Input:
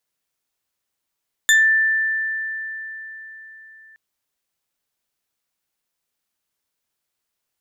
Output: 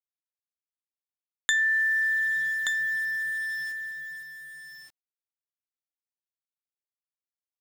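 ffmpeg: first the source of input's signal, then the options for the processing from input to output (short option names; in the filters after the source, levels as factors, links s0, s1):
-f lavfi -i "aevalsrc='0.316*pow(10,-3*t/4.18)*sin(2*PI*1770*t+1.3*pow(10,-3*t/0.24)*sin(2*PI*3.01*1770*t))':d=2.47:s=44100"
-filter_complex "[0:a]acrusher=bits=6:mix=0:aa=0.000001,acrossover=split=980|7600[s0][s1][s2];[s0]acompressor=threshold=0.00316:ratio=4[s3];[s1]acompressor=threshold=0.0631:ratio=4[s4];[s2]acompressor=threshold=0.002:ratio=4[s5];[s3][s4][s5]amix=inputs=3:normalize=0,asplit=2[s6][s7];[s7]aecho=0:1:1177:0.531[s8];[s6][s8]amix=inputs=2:normalize=0"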